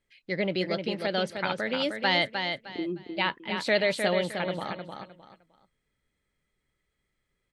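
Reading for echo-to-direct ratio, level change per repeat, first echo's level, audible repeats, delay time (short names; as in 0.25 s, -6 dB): -5.5 dB, -11.5 dB, -6.0 dB, 3, 0.307 s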